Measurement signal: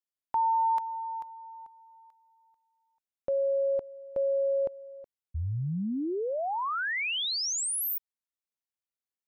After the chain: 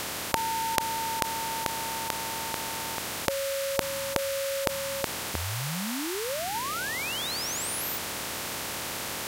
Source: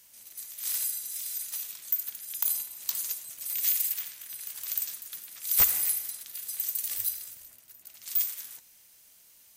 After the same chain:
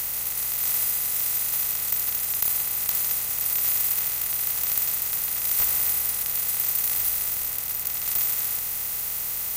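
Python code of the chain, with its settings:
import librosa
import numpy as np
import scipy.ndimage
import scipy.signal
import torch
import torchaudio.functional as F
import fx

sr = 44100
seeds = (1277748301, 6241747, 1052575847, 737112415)

y = fx.bin_compress(x, sr, power=0.2)
y = y * 10.0 ** (-5.5 / 20.0)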